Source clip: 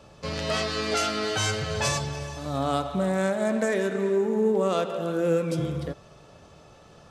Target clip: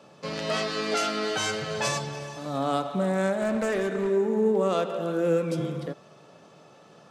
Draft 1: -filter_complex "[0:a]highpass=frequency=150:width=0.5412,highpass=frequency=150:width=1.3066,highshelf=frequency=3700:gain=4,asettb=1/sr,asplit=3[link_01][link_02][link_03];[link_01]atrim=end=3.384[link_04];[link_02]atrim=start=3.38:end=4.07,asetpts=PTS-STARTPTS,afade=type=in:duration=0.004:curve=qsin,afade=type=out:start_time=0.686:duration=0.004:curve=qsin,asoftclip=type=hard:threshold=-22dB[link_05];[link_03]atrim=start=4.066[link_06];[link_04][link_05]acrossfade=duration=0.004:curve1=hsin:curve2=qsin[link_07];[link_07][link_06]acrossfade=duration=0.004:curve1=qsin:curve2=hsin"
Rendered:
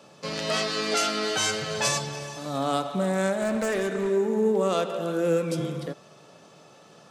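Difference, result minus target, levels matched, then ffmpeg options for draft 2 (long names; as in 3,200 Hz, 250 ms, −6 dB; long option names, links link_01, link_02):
8,000 Hz band +5.0 dB
-filter_complex "[0:a]highpass=frequency=150:width=0.5412,highpass=frequency=150:width=1.3066,highshelf=frequency=3700:gain=-3.5,asettb=1/sr,asplit=3[link_01][link_02][link_03];[link_01]atrim=end=3.384[link_04];[link_02]atrim=start=3.38:end=4.07,asetpts=PTS-STARTPTS,afade=type=in:duration=0.004:curve=qsin,afade=type=out:start_time=0.686:duration=0.004:curve=qsin,asoftclip=type=hard:threshold=-22dB[link_05];[link_03]atrim=start=4.066[link_06];[link_04][link_05]acrossfade=duration=0.004:curve1=hsin:curve2=qsin[link_07];[link_07][link_06]acrossfade=duration=0.004:curve1=qsin:curve2=hsin"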